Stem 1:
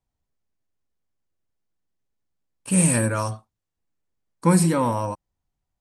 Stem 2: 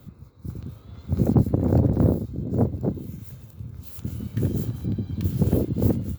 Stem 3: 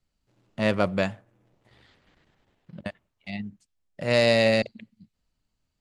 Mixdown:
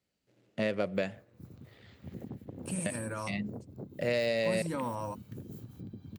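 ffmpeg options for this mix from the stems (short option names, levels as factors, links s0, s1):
-filter_complex "[0:a]volume=0.355[s0];[1:a]acompressor=threshold=0.0562:ratio=6,adelay=950,volume=0.211[s1];[2:a]equalizer=f=500:t=o:w=1:g=7,equalizer=f=1000:t=o:w=1:g=-8,equalizer=f=2000:t=o:w=1:g=4,acompressor=threshold=0.0562:ratio=6,volume=0.794,asplit=2[s2][s3];[s3]apad=whole_len=256065[s4];[s0][s4]sidechaincompress=threshold=0.0126:ratio=8:attack=28:release=248[s5];[s5][s1]amix=inputs=2:normalize=0,alimiter=level_in=1.19:limit=0.0631:level=0:latency=1:release=129,volume=0.841,volume=1[s6];[s2][s6]amix=inputs=2:normalize=0,highpass=110"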